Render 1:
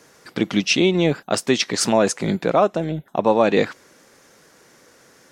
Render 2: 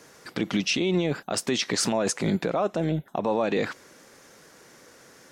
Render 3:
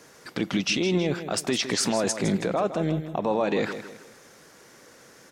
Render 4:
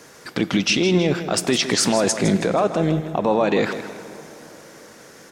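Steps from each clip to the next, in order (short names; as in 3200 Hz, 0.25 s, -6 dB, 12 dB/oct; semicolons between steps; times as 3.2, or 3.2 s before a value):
limiter -15 dBFS, peak gain reduction 10.5 dB
feedback echo 0.16 s, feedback 38%, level -11 dB
plate-style reverb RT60 4.5 s, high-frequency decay 0.55×, DRR 15 dB; gain +6 dB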